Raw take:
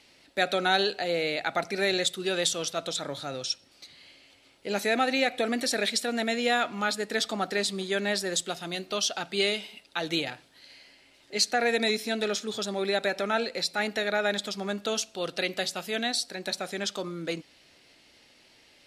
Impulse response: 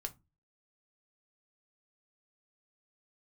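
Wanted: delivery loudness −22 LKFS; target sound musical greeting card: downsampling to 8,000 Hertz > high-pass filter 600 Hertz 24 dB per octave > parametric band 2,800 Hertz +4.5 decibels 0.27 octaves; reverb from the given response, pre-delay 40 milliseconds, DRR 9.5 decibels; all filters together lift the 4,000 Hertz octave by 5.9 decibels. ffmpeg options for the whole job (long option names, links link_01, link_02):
-filter_complex "[0:a]equalizer=frequency=4000:width_type=o:gain=6,asplit=2[link_01][link_02];[1:a]atrim=start_sample=2205,adelay=40[link_03];[link_02][link_03]afir=irnorm=-1:irlink=0,volume=-7.5dB[link_04];[link_01][link_04]amix=inputs=2:normalize=0,aresample=8000,aresample=44100,highpass=frequency=600:width=0.5412,highpass=frequency=600:width=1.3066,equalizer=frequency=2800:width_type=o:width=0.27:gain=4.5,volume=6.5dB"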